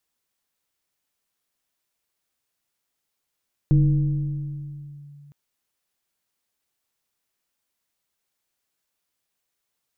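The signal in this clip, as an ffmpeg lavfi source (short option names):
-f lavfi -i "aevalsrc='0.251*pow(10,-3*t/2.87)*sin(2*PI*144*t+0.55*clip(1-t/1.47,0,1)*sin(2*PI*1.17*144*t))':d=1.61:s=44100"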